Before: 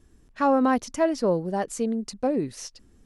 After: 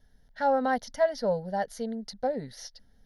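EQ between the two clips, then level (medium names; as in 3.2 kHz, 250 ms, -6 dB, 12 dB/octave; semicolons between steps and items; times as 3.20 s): peaking EQ 78 Hz -9 dB 1.5 oct; static phaser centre 1.7 kHz, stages 8; 0.0 dB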